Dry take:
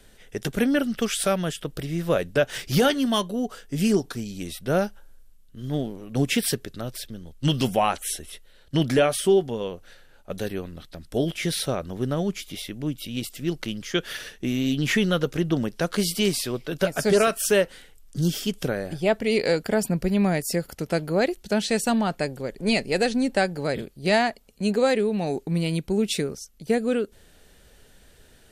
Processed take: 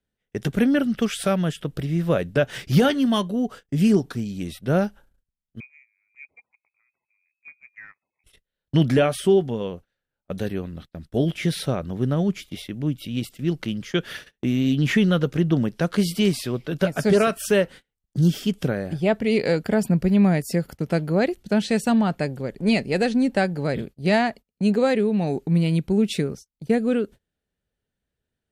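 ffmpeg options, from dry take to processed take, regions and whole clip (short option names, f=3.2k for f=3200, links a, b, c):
-filter_complex "[0:a]asettb=1/sr,asplit=3[a][b][c];[a]atrim=end=5.604[d];[b]atrim=start=5.6:end=8.24,asetpts=PTS-STARTPTS,afade=t=in:d=0.004:c=qsin,afade=t=out:st=2.636:d=0.004:c=qsin,highpass=f=54:p=1,acompressor=threshold=-39dB:ratio=3:attack=3.2:release=140:knee=1:detection=peak,lowpass=f=2.2k:t=q:w=0.5098,lowpass=f=2.2k:t=q:w=0.6013,lowpass=f=2.2k:t=q:w=0.9,lowpass=f=2.2k:t=q:w=2.563,afreqshift=-2600[e];[c]atrim=start=8.236[f];[d][e]acrossfade=d=0.004:c1=hsin:c2=qsin[g];[g][f]acrossfade=d=0.004:c1=qsin:c2=hsin,bass=f=250:g=9,treble=f=4k:g=-6,agate=range=-29dB:threshold=-35dB:ratio=16:detection=peak,highpass=f=120:p=1"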